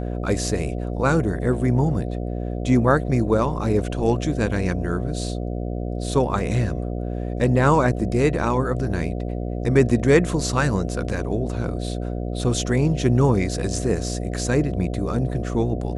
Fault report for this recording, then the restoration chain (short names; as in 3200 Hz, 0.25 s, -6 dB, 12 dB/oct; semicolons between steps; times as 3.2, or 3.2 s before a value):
buzz 60 Hz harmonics 12 -27 dBFS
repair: de-hum 60 Hz, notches 12